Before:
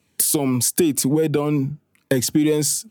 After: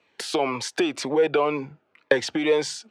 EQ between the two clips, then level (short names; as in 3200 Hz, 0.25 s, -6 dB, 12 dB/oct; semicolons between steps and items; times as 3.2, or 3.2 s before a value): dynamic EQ 240 Hz, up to -6 dB, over -29 dBFS, Q 0.82; air absorption 120 m; three-band isolator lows -22 dB, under 400 Hz, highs -13 dB, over 4200 Hz; +7.0 dB